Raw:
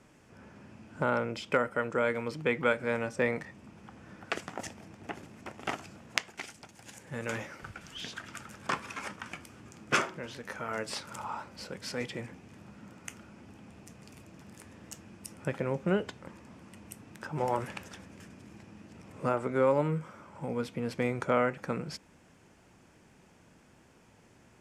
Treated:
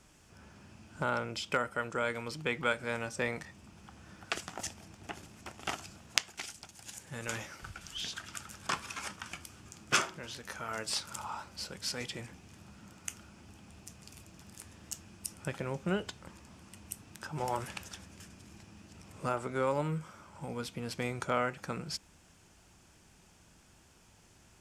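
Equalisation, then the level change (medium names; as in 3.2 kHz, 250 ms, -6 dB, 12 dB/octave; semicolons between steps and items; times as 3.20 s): graphic EQ 125/250/500/1000/2000 Hz -7/-9/-10/-5/-8 dB; +6.0 dB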